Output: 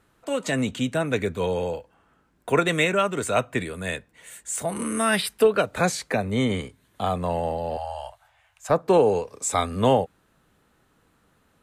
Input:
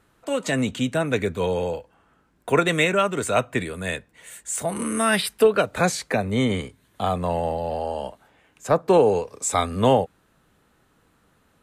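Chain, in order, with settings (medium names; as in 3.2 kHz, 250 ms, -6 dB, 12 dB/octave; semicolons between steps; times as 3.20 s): 7.77–8.70 s: Chebyshev band-stop 110–670 Hz, order 3; trim -1.5 dB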